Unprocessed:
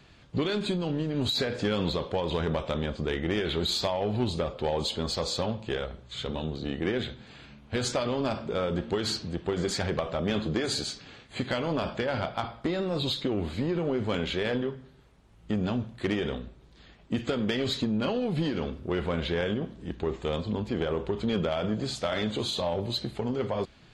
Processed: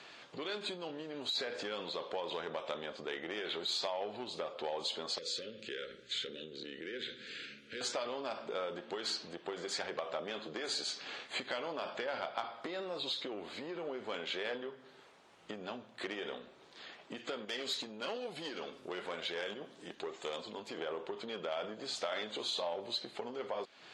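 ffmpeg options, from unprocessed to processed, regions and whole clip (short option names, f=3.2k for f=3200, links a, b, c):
-filter_complex "[0:a]asettb=1/sr,asplit=3[a][b][c];[a]atrim=end=5.184[d];[b]atrim=start=5.18:end=7.81,asetpts=PTS-STARTPTS,afade=t=in:d=0.004:c=qsin,afade=t=out:st=2.626:d=0.004:c=qsin,acompressor=threshold=-33dB:ratio=4:attack=3.2:release=140:knee=1:detection=peak,asuperstop=centerf=860:order=8:qfactor=0.93[e];[c]atrim=start=7.806[f];[d][e]acrossfade=d=0.004:c1=hsin:c2=qsin[g];[g][f]acrossfade=d=0.004:c1=qsin:c2=hsin,asettb=1/sr,asplit=3[h][i][j];[h]atrim=end=17.454[k];[i]atrim=start=17.45:end=20.78,asetpts=PTS-STARTPTS,afade=t=in:d=0.004:c=qsin,afade=t=out:st=3.326:d=0.004:c=qsin,aemphasis=mode=production:type=50fm,flanger=delay=1.3:depth=6.1:regen=72:speed=1.1:shape=sinusoidal,asoftclip=type=hard:threshold=-26.5dB[l];[j]atrim=start=20.776[m];[k][l]acrossfade=d=0.004:c1=hsin:c2=qsin[n];[n][m]acrossfade=d=0.004:c1=qsin:c2=hsin,lowpass=8k,acompressor=threshold=-41dB:ratio=4,highpass=480,volume=6dB"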